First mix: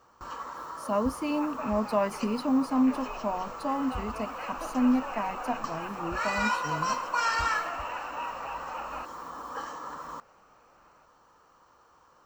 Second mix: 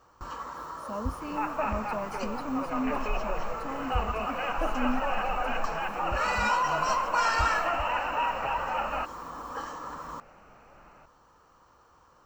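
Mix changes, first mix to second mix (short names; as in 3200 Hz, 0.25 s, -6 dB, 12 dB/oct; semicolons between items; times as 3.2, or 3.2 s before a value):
speech -10.0 dB; second sound +8.0 dB; master: add low shelf 150 Hz +9 dB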